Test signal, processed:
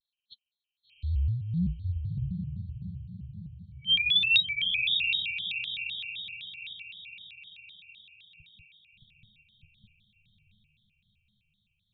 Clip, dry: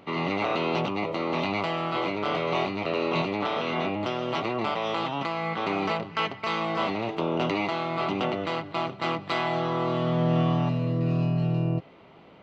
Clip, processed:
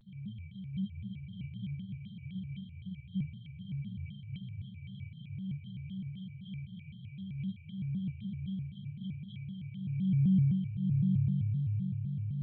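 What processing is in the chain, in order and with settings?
knee-point frequency compression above 2.1 kHz 4:1; FFT band-reject 190–2700 Hz; flange 0.22 Hz, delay 9.1 ms, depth 5.6 ms, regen +19%; echo that smears into a reverb 715 ms, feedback 48%, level -3.5 dB; vibrato with a chosen wave square 3.9 Hz, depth 250 cents

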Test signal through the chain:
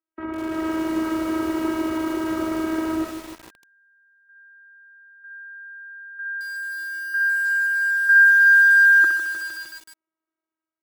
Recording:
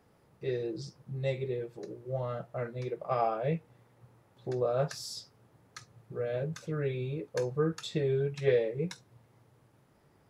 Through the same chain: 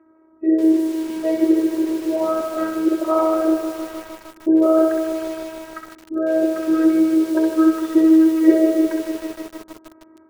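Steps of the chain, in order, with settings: band-stop 690 Hz, Q 12; in parallel at -0.5 dB: peak limiter -24.5 dBFS; on the sum: tilt shelf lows +3.5 dB, about 1.1 kHz; spectral gate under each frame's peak -30 dB strong; level rider gain up to 5.5 dB; robot voice 320 Hz; cabinet simulation 120–2000 Hz, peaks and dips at 160 Hz -9 dB, 350 Hz +10 dB, 1.3 kHz +5 dB; on a send: thinning echo 64 ms, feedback 35%, high-pass 600 Hz, level -4 dB; on the sum: bit-crushed delay 153 ms, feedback 80%, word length 6-bit, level -8.5 dB; trim +2.5 dB

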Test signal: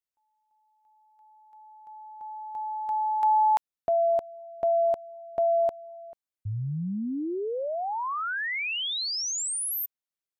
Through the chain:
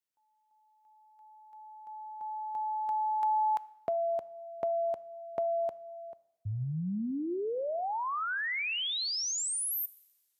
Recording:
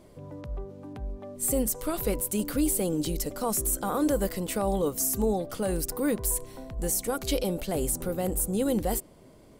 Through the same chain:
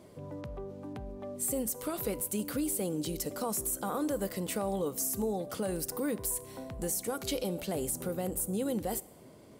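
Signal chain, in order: high-pass 91 Hz 12 dB/octave; compression 2:1, threshold -34 dBFS; two-slope reverb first 0.82 s, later 3.3 s, from -25 dB, DRR 17 dB

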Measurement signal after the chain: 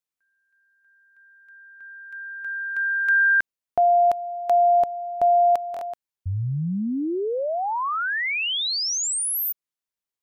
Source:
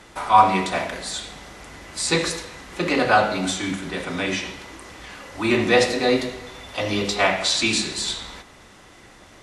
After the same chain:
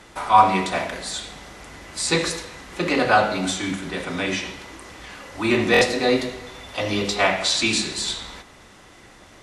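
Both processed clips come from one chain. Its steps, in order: buffer glitch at 5.72 s, samples 1024, times 3

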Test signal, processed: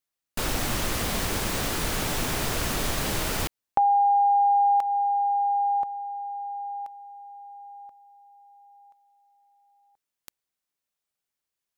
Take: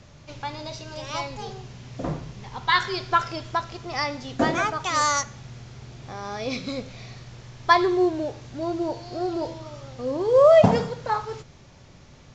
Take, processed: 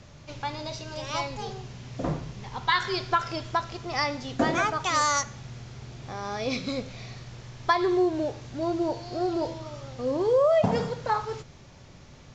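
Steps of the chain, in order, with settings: compression 5:1, threshold -19 dBFS

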